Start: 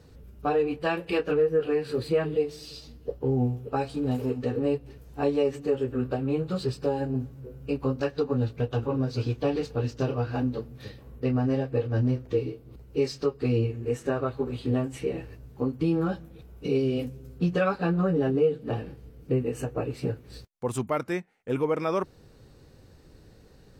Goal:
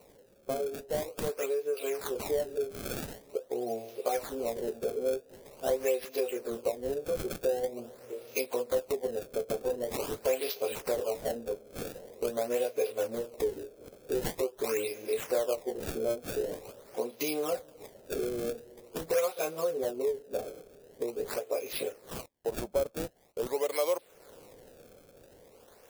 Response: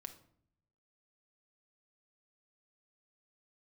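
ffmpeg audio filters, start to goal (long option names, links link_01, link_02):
-filter_complex "[0:a]highpass=frequency=600:width_type=q:width=5.1,highshelf=frequency=2100:width_type=q:width=1.5:gain=7.5,asetrate=40517,aresample=44100,dynaudnorm=framelen=870:gausssize=5:maxgain=11.5dB,acrossover=split=890[link_01][link_02];[link_02]acrusher=samples=26:mix=1:aa=0.000001:lfo=1:lforange=41.6:lforate=0.45[link_03];[link_01][link_03]amix=inputs=2:normalize=0,acompressor=threshold=-33dB:ratio=2,crystalizer=i=2:c=0,volume=-3.5dB"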